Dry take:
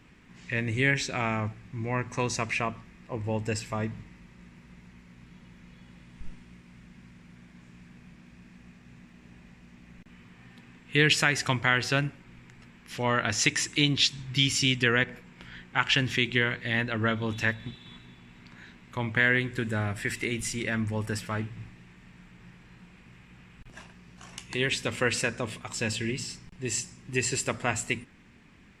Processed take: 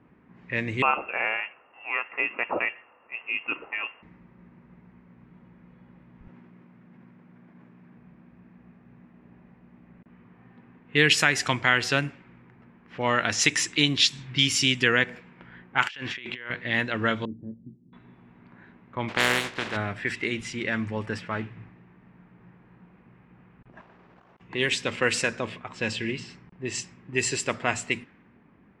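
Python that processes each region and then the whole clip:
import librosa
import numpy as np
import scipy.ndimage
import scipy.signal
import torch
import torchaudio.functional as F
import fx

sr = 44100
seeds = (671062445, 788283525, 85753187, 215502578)

y = fx.chain(x, sr, fx.highpass(hz=260.0, slope=24),
    fx.freq_invert(carrier_hz=3000), at=(0.82, 4.03))
y = fx.chain(y, sr, fx.highpass(hz=130.0, slope=12),
    fx.sustainer(db_per_s=23.0), at=(6.27, 7.97))
y = fx.chain(y, sr, fx.low_shelf(hz=410.0, db=-12.0),
    fx.over_compress(threshold_db=-38.0, ratio=-1.0),
    fx.clip_hard(threshold_db=-18.5), at=(15.82, 16.5))
y = fx.chain(y, sr, fx.ladder_lowpass(hz=350.0, resonance_pct=35),
    fx.doubler(ms=23.0, db=-9.5), at=(17.25, 17.93))
y = fx.spec_flatten(y, sr, power=0.28, at=(19.08, 19.75), fade=0.02)
y = fx.lowpass(y, sr, hz=2900.0, slope=6, at=(19.08, 19.75), fade=0.02)
y = fx.chain(y, sr, fx.over_compress(threshold_db=-52.0, ratio=-0.5),
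    fx.air_absorb(metres=100.0),
    fx.spectral_comp(ratio=2.0), at=(23.81, 24.41))
y = fx.highpass(y, sr, hz=200.0, slope=6)
y = fx.env_lowpass(y, sr, base_hz=1000.0, full_db=-23.0)
y = F.gain(torch.from_numpy(y), 3.0).numpy()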